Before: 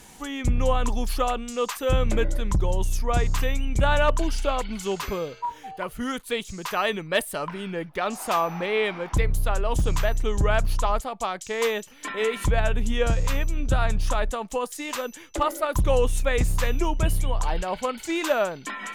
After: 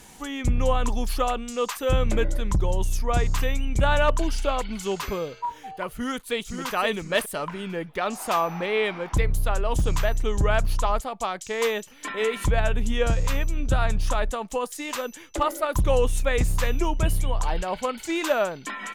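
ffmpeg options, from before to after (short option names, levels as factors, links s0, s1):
-filter_complex "[0:a]asplit=2[s0][s1];[s1]afade=t=in:st=5.93:d=0.01,afade=t=out:st=6.73:d=0.01,aecho=0:1:520|1040|1560:0.473151|0.0709727|0.0106459[s2];[s0][s2]amix=inputs=2:normalize=0"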